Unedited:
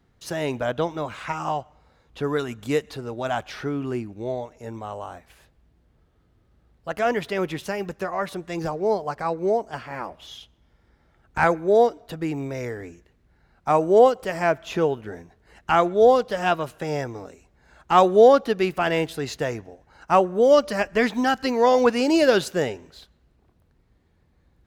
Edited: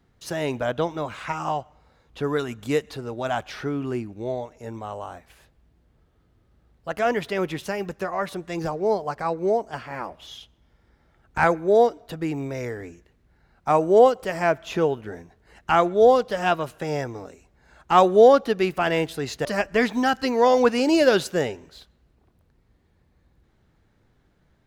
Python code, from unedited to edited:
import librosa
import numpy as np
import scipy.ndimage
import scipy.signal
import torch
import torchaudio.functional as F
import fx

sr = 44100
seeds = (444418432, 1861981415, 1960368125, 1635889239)

y = fx.edit(x, sr, fx.cut(start_s=19.45, length_s=1.21), tone=tone)